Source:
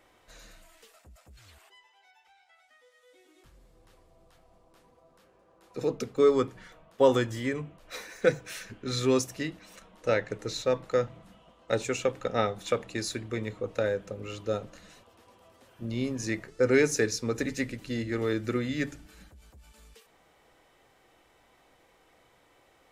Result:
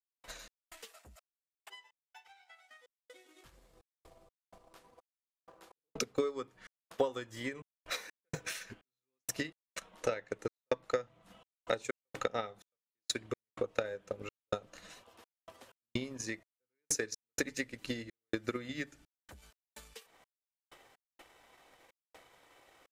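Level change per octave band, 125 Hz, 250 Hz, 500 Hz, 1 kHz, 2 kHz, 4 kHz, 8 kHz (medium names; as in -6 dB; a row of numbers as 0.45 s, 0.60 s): -13.5 dB, -11.5 dB, -11.0 dB, -8.0 dB, -7.0 dB, -5.0 dB, -3.0 dB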